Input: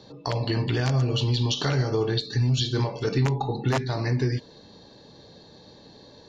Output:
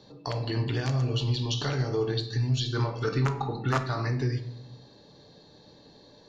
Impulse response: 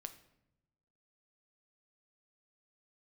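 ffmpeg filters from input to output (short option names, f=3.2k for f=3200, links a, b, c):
-filter_complex "[0:a]asettb=1/sr,asplit=3[a][b][c];[a]atrim=end=2.704[d];[b]atrim=start=2.7:end=4.07,asetpts=PTS-STARTPTS,afade=t=in:d=0.004:c=qsin,afade=t=out:st=1.366:d=0.004:c=qsin,equalizer=f=1.3k:w=3.1:g=13[e];[c]atrim=start=4.066[f];[d][e]acrossfade=d=0.004:c1=hsin:c2=qsin[g];[g][f]acrossfade=d=0.004:c1=qsin:c2=hsin[h];[1:a]atrim=start_sample=2205[i];[h][i]afir=irnorm=-1:irlink=0"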